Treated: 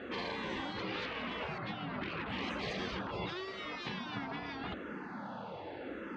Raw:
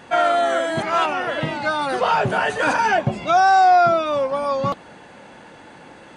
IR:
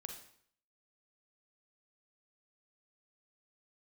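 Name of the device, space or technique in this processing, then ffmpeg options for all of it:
barber-pole phaser into a guitar amplifier: -filter_complex "[0:a]asettb=1/sr,asplit=3[link_01][link_02][link_03];[link_01]atrim=end=1.584[link_04];[link_02]atrim=start=1.58:end=2.26,asetpts=PTS-STARTPTS,afade=type=in:duration=0.004:curve=qsin,afade=type=out:start_time=0.676:duration=0.004:curve=qsin,lowpass=1600[link_05];[link_03]atrim=start=2.256[link_06];[link_04][link_05]acrossfade=duration=0.004:curve1=hsin:curve2=qsin[link_07];[link_07][link_06]acrossfade=duration=0.004:curve1=qsin:curve2=hsin,asplit=2[link_08][link_09];[link_09]afreqshift=-0.85[link_10];[link_08][link_10]amix=inputs=2:normalize=1,asoftclip=type=tanh:threshold=-22.5dB,highpass=80,equalizer=frequency=97:width_type=q:width=4:gain=-4,equalizer=frequency=140:width_type=q:width=4:gain=-8,equalizer=frequency=1300:width_type=q:width=4:gain=7,lowpass=frequency=4500:width=0.5412,lowpass=frequency=4500:width=1.3066,afftfilt=real='re*lt(hypot(re,im),0.0631)':imag='im*lt(hypot(re,im),0.0631)':win_size=1024:overlap=0.75,tiltshelf=frequency=700:gain=5.5,volume=1.5dB"

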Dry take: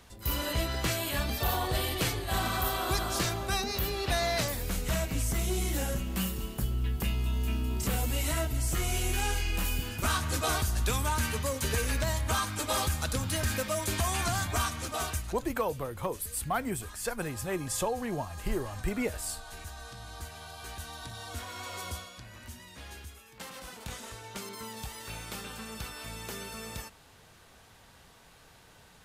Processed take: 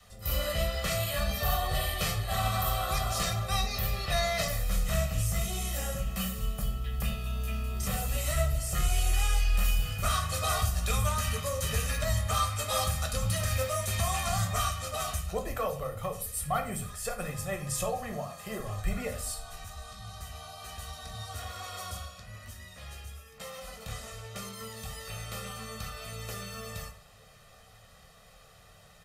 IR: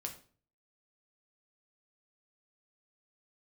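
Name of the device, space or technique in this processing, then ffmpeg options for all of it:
microphone above a desk: -filter_complex "[0:a]bandreject=frequency=60:width_type=h:width=6,bandreject=frequency=120:width_type=h:width=6,bandreject=frequency=180:width_type=h:width=6,adynamicequalizer=threshold=0.00355:dfrequency=370:dqfactor=1.4:tfrequency=370:tqfactor=1.4:attack=5:release=100:ratio=0.375:range=3:mode=cutabove:tftype=bell,asettb=1/sr,asplit=3[link_01][link_02][link_03];[link_01]atrim=end=18.134[link_04];[link_02]atrim=start=18.13:end=18.6,asetpts=PTS-STARTPTS,afade=type=in:duration=0.004:curve=qsin,afade=type=out:start_time=0.466:duration=0.004:curve=qsin,highpass=190[link_05];[link_03]atrim=start=18.596[link_06];[link_04][link_05]acrossfade=duration=0.004:curve1=hsin:curve2=qsin[link_07];[link_07][link_06]acrossfade=duration=0.004:curve1=qsin:curve2=hsin,aecho=1:1:1.6:0.76[link_08];[1:a]atrim=start_sample=2205[link_09];[link_08][link_09]afir=irnorm=-1:irlink=0"

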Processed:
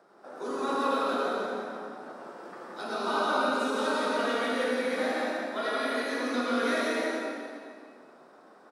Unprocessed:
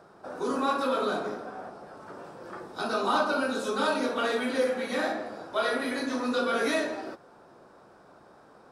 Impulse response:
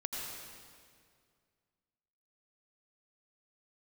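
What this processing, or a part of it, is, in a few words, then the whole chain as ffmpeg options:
PA in a hall: -filter_complex "[0:a]highpass=frequency=200:width=0.5412,highpass=frequency=200:width=1.3066,equalizer=frequency=2000:width_type=o:width=0.26:gain=4,aecho=1:1:173:0.631[link_01];[1:a]atrim=start_sample=2205[link_02];[link_01][link_02]afir=irnorm=-1:irlink=0,volume=-4dB"

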